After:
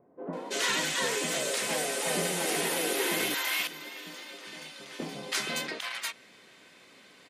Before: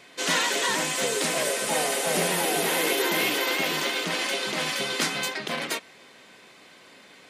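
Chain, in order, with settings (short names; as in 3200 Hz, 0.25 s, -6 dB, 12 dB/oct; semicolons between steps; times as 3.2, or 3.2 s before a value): 3.34–4.99 resonator 300 Hz, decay 0.65 s, mix 80%; bands offset in time lows, highs 0.33 s, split 820 Hz; gain -4 dB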